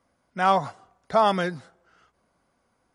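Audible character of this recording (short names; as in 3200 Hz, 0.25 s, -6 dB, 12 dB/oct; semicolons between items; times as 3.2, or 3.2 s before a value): noise floor -72 dBFS; spectral tilt -3.5 dB/oct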